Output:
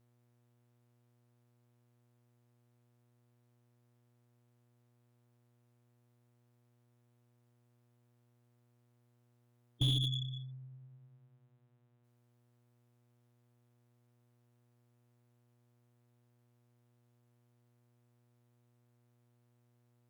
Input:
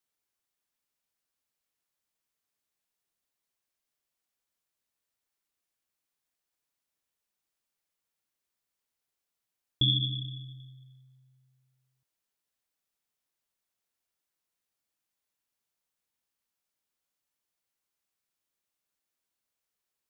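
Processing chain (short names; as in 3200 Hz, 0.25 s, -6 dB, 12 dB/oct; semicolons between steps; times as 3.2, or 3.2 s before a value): spectral gate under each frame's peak -15 dB strong; buzz 120 Hz, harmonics 33, -70 dBFS -8 dB/oct; tube stage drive 19 dB, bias 0.6; slew limiter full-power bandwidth 66 Hz; gain +1 dB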